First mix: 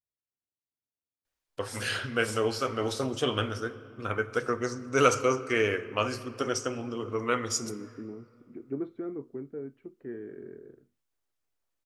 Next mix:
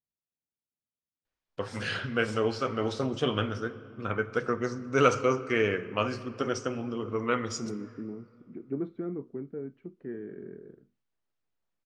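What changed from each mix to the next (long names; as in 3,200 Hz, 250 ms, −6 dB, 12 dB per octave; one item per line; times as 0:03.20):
first voice: add high-frequency loss of the air 110 metres
master: add parametric band 180 Hz +12 dB 0.37 octaves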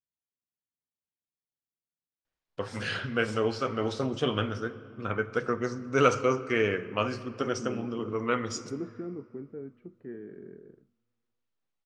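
first voice: entry +1.00 s
second voice −3.0 dB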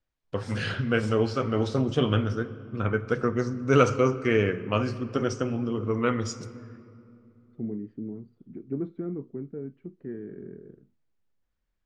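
first voice: entry −2.25 s
master: add low-shelf EQ 280 Hz +10 dB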